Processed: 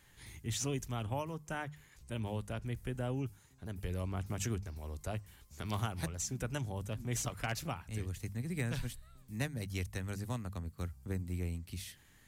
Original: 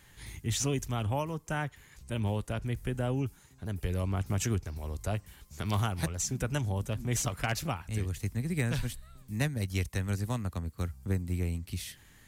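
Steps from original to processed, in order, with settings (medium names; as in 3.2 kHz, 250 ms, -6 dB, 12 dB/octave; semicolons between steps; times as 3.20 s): hum notches 50/100/150/200 Hz; trim -5.5 dB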